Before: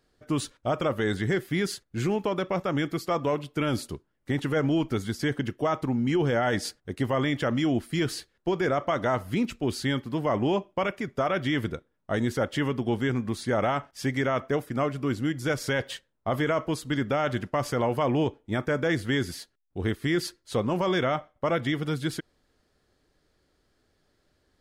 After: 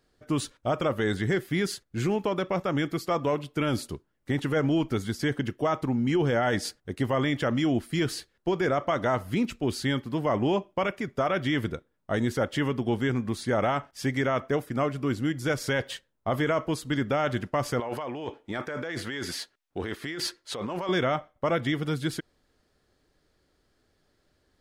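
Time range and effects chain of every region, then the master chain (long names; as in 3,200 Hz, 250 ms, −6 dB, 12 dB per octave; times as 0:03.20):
0:17.80–0:20.89: low-shelf EQ 110 Hz −8.5 dB + compressor whose output falls as the input rises −32 dBFS + mid-hump overdrive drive 8 dB, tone 4,100 Hz, clips at −17.5 dBFS
whole clip: no processing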